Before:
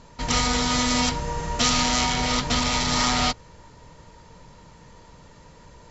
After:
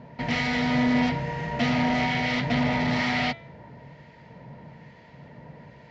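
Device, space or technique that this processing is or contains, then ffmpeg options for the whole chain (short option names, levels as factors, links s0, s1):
guitar amplifier with harmonic tremolo: -filter_complex "[0:a]equalizer=f=3700:t=o:w=0.54:g=-5,bandreject=f=335.3:t=h:w=4,bandreject=f=670.6:t=h:w=4,bandreject=f=1005.9:t=h:w=4,bandreject=f=1341.2:t=h:w=4,bandreject=f=1676.5:t=h:w=4,bandreject=f=2011.8:t=h:w=4,bandreject=f=2347.1:t=h:w=4,bandreject=f=2682.4:t=h:w=4,bandreject=f=3017.7:t=h:w=4,bandreject=f=3353:t=h:w=4,bandreject=f=3688.3:t=h:w=4,bandreject=f=4023.6:t=h:w=4,acrossover=split=1500[s0][s1];[s0]aeval=exprs='val(0)*(1-0.5/2+0.5/2*cos(2*PI*1.1*n/s))':c=same[s2];[s1]aeval=exprs='val(0)*(1-0.5/2-0.5/2*cos(2*PI*1.1*n/s))':c=same[s3];[s2][s3]amix=inputs=2:normalize=0,asoftclip=type=tanh:threshold=0.0668,highpass=98,equalizer=f=140:t=q:w=4:g=10,equalizer=f=230:t=q:w=4:g=7,equalizer=f=670:t=q:w=4:g=8,equalizer=f=1200:t=q:w=4:g=-9,equalizer=f=2000:t=q:w=4:g=8,lowpass=f=3900:w=0.5412,lowpass=f=3900:w=1.3066,volume=1.33"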